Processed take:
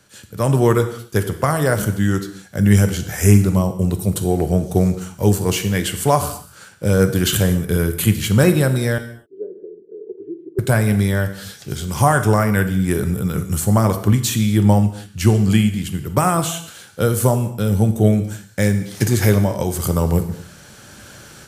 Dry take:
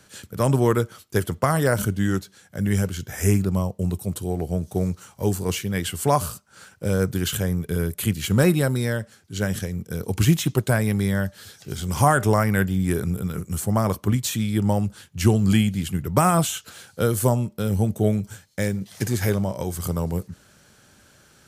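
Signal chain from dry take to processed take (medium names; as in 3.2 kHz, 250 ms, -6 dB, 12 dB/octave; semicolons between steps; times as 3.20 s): level rider gain up to 15 dB; 8.98–10.59 s: Butterworth band-pass 390 Hz, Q 4.9; gated-style reverb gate 290 ms falling, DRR 8 dB; trim -1.5 dB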